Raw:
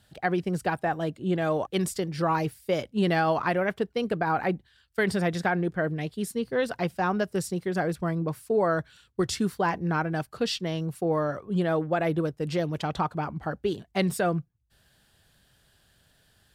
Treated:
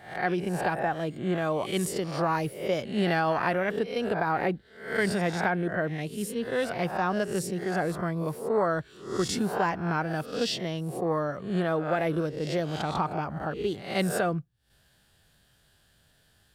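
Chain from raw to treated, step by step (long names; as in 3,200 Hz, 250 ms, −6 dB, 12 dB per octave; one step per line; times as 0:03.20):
peak hold with a rise ahead of every peak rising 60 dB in 0.52 s
level −2.5 dB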